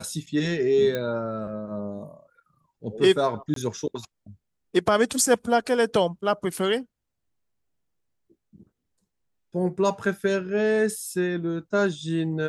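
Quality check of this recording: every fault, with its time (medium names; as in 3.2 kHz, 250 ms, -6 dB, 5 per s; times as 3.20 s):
0.95 s: pop -15 dBFS
3.54–3.56 s: dropout 23 ms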